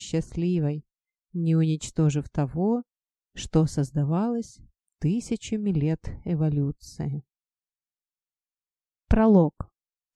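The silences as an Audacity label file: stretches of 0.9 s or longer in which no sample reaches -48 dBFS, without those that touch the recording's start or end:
7.210000	9.110000	silence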